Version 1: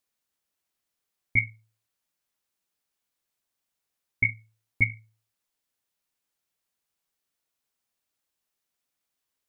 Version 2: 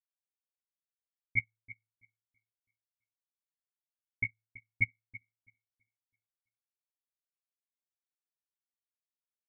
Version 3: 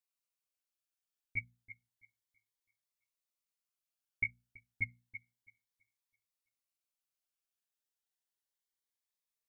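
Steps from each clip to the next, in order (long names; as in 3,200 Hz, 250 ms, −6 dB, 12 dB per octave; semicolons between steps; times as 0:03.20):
parametric band 1,600 Hz +13.5 dB 0.22 octaves; on a send: repeating echo 330 ms, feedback 44%, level −7.5 dB; on the sum: expander for the loud parts 2.5 to 1, over −37 dBFS; level −6.5 dB
parametric band 160 Hz −10.5 dB 2.7 octaves; mains-hum notches 60/120/180/240 Hz; phaser whose notches keep moving one way rising 0.31 Hz; level +3.5 dB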